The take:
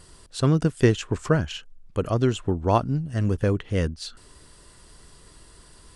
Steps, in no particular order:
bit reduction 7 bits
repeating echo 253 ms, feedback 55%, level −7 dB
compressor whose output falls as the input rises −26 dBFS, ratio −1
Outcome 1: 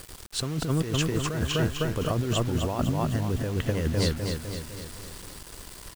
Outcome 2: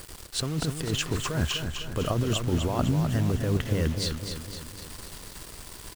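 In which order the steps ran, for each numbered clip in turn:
repeating echo, then compressor whose output falls as the input rises, then bit reduction
compressor whose output falls as the input rises, then bit reduction, then repeating echo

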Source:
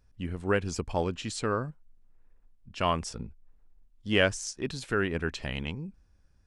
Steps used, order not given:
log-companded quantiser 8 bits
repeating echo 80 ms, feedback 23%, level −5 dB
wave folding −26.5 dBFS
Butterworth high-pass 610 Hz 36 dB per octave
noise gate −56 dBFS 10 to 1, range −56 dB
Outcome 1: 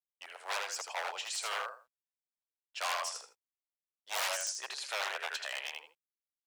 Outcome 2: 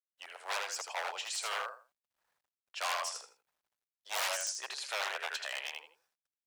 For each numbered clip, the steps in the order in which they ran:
repeating echo, then wave folding, then Butterworth high-pass, then noise gate, then log-companded quantiser
noise gate, then repeating echo, then wave folding, then Butterworth high-pass, then log-companded quantiser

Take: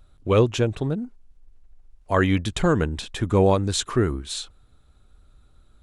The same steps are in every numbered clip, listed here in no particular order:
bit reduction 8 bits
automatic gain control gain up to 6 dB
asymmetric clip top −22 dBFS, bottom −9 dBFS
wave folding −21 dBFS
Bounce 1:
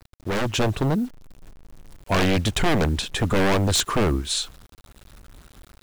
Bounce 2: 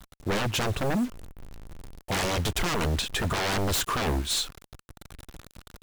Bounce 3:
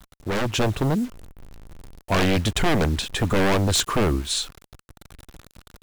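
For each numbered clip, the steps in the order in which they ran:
asymmetric clip, then wave folding, then automatic gain control, then bit reduction
bit reduction, then asymmetric clip, then automatic gain control, then wave folding
bit reduction, then asymmetric clip, then wave folding, then automatic gain control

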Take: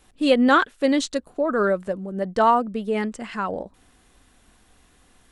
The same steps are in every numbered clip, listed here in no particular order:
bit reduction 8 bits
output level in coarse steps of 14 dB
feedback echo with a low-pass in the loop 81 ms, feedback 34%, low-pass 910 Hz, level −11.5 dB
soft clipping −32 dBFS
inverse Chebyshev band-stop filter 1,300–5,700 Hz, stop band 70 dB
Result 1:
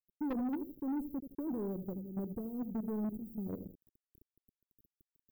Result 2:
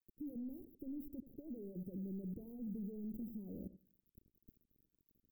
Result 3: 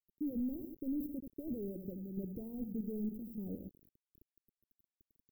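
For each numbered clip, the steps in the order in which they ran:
output level in coarse steps, then feedback echo with a low-pass in the loop, then bit reduction, then inverse Chebyshev band-stop filter, then soft clipping
bit reduction, then soft clipping, then feedback echo with a low-pass in the loop, then output level in coarse steps, then inverse Chebyshev band-stop filter
feedback echo with a low-pass in the loop, then output level in coarse steps, then soft clipping, then bit reduction, then inverse Chebyshev band-stop filter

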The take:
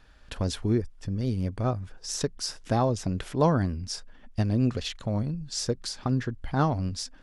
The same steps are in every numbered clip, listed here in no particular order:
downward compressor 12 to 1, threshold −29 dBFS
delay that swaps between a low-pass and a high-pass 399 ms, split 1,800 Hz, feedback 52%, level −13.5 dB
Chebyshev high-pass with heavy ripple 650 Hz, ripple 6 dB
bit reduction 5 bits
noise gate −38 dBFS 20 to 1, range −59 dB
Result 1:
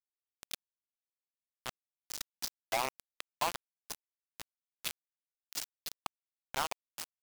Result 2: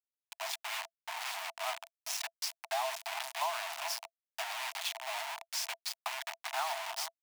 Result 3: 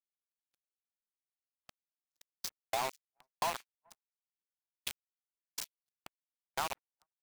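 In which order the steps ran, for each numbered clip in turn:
delay that swaps between a low-pass and a high-pass, then noise gate, then Chebyshev high-pass with heavy ripple, then downward compressor, then bit reduction
noise gate, then delay that swaps between a low-pass and a high-pass, then bit reduction, then Chebyshev high-pass with heavy ripple, then downward compressor
Chebyshev high-pass with heavy ripple, then bit reduction, then delay that swaps between a low-pass and a high-pass, then noise gate, then downward compressor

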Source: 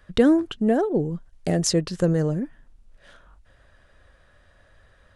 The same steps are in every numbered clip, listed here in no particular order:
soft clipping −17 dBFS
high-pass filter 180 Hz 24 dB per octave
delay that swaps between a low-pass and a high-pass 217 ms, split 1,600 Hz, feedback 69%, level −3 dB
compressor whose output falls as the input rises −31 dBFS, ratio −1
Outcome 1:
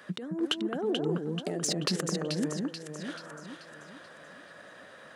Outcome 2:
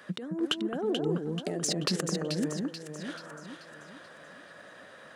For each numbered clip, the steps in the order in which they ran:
compressor whose output falls as the input rises, then delay that swaps between a low-pass and a high-pass, then soft clipping, then high-pass filter
compressor whose output falls as the input rises, then high-pass filter, then soft clipping, then delay that swaps between a low-pass and a high-pass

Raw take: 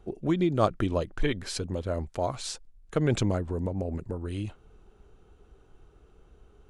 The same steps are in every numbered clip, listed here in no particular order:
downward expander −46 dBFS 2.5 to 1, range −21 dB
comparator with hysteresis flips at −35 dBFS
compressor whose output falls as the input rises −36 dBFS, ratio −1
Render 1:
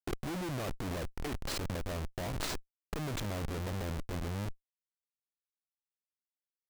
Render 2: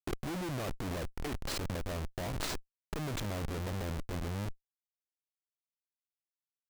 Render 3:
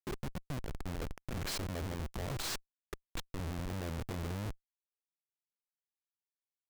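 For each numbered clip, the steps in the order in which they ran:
comparator with hysteresis, then downward expander, then compressor whose output falls as the input rises
downward expander, then comparator with hysteresis, then compressor whose output falls as the input rises
downward expander, then compressor whose output falls as the input rises, then comparator with hysteresis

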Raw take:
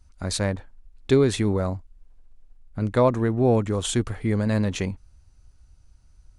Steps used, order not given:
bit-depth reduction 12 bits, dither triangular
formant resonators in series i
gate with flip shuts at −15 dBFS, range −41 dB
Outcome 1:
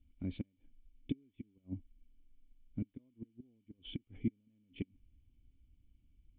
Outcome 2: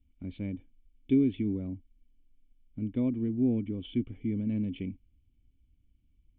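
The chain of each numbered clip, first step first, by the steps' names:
gate with flip, then bit-depth reduction, then formant resonators in series
bit-depth reduction, then formant resonators in series, then gate with flip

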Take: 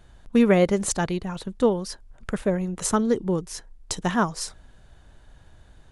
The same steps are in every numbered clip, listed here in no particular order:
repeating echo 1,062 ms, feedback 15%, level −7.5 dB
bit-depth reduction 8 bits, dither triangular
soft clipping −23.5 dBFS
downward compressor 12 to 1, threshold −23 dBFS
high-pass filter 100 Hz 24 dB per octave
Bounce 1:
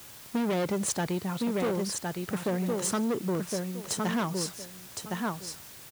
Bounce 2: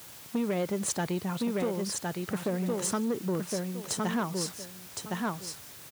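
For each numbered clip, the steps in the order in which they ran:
repeating echo, then soft clipping, then high-pass filter, then bit-depth reduction, then downward compressor
repeating echo, then downward compressor, then bit-depth reduction, then soft clipping, then high-pass filter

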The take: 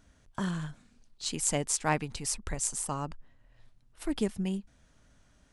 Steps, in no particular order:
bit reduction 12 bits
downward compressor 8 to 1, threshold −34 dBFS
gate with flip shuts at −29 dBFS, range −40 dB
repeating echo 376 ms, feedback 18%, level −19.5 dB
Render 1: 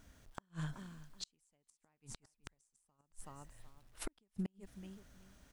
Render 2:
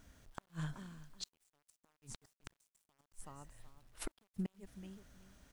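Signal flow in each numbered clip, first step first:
repeating echo, then bit reduction, then downward compressor, then gate with flip
repeating echo, then downward compressor, then gate with flip, then bit reduction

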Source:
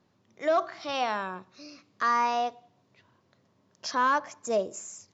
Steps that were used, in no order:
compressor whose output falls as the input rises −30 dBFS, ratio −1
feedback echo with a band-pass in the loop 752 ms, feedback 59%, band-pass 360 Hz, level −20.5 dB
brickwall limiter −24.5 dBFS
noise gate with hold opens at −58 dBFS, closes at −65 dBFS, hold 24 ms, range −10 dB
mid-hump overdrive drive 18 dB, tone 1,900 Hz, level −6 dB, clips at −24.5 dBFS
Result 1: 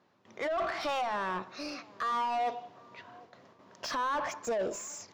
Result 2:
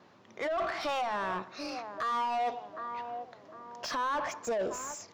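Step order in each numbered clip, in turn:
noise gate with hold, then compressor whose output falls as the input rises, then brickwall limiter, then mid-hump overdrive, then feedback echo with a band-pass in the loop
feedback echo with a band-pass in the loop, then compressor whose output falls as the input rises, then brickwall limiter, then mid-hump overdrive, then noise gate with hold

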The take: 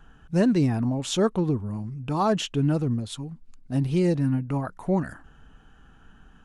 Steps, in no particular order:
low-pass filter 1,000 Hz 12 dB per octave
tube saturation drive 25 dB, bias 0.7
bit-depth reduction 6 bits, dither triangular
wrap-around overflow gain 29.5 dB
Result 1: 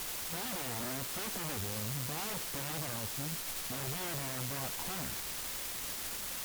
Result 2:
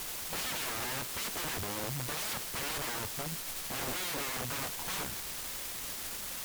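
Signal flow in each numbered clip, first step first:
low-pass filter, then bit-depth reduction, then wrap-around overflow, then tube saturation
low-pass filter, then wrap-around overflow, then bit-depth reduction, then tube saturation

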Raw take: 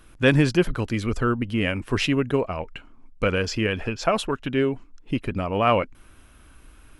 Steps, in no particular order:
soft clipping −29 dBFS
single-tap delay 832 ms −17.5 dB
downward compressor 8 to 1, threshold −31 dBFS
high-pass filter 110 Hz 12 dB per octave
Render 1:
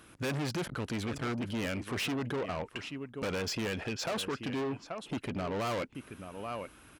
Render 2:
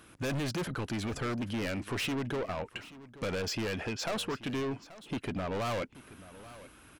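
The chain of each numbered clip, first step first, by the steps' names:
single-tap delay, then soft clipping, then downward compressor, then high-pass filter
high-pass filter, then soft clipping, then downward compressor, then single-tap delay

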